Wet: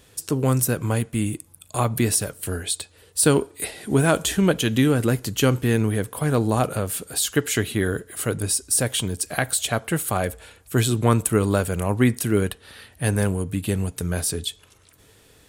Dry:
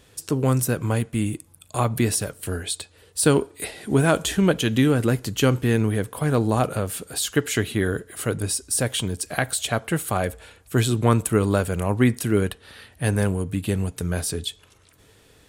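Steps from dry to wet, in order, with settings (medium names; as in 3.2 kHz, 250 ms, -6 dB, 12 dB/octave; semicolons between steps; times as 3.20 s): treble shelf 7.7 kHz +5.5 dB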